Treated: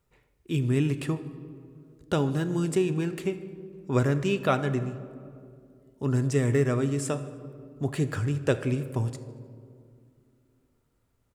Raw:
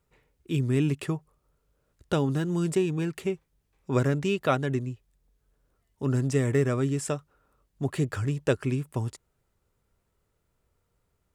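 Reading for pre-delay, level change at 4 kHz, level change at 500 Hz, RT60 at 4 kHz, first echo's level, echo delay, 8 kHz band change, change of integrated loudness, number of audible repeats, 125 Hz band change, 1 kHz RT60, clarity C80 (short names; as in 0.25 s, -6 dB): 8 ms, 0.0 dB, +0.5 dB, 1.2 s, -21.5 dB, 77 ms, 0.0 dB, +0.5 dB, 1, +0.5 dB, 2.0 s, 14.0 dB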